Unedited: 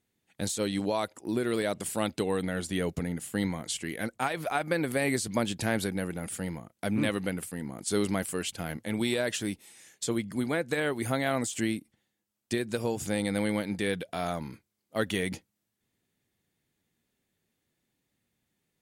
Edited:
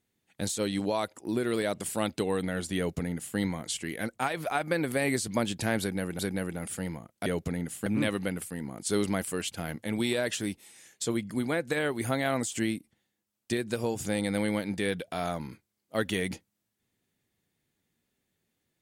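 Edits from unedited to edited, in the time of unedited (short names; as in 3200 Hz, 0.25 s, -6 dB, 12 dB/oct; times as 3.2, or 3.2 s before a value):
2.77–3.37 copy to 6.87
5.8–6.19 loop, 2 plays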